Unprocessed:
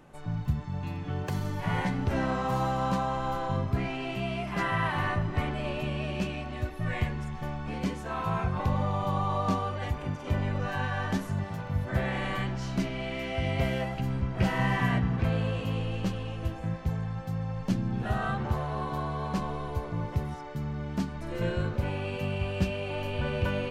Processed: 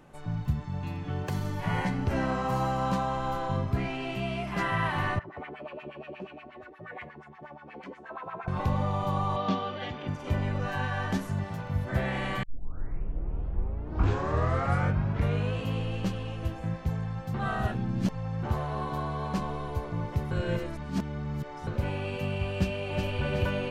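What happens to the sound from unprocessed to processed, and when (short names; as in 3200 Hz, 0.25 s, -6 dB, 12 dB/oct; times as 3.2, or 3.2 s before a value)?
1.68–2.87 notch 3600 Hz
5.19–8.48 LFO band-pass sine 8.4 Hz 350–2000 Hz
9.36–10.08 speaker cabinet 170–5300 Hz, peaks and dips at 210 Hz +4 dB, 1000 Hz -4 dB, 3300 Hz +8 dB
12.43 tape start 3.18 s
17.34–18.43 reverse
20.31–21.67 reverse
22.55–23.07 echo throw 0.37 s, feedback 50%, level -4.5 dB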